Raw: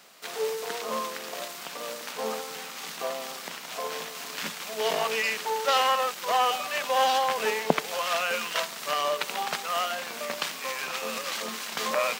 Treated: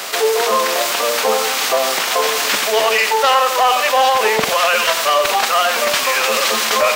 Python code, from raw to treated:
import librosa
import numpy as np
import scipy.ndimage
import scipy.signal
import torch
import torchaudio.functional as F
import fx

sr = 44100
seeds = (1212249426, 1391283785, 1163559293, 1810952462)

p1 = scipy.signal.sosfilt(scipy.signal.butter(2, 340.0, 'highpass', fs=sr, output='sos'), x)
p2 = fx.rider(p1, sr, range_db=5, speed_s=0.5)
p3 = p1 + (p2 * 10.0 ** (-1.0 / 20.0))
p4 = np.clip(p3, -10.0 ** (-13.5 / 20.0), 10.0 ** (-13.5 / 20.0))
p5 = fx.stretch_vocoder(p4, sr, factor=0.57)
p6 = p5 + fx.echo_single(p5, sr, ms=92, db=-12.5, dry=0)
p7 = fx.env_flatten(p6, sr, amount_pct=50)
y = p7 * 10.0 ** (6.5 / 20.0)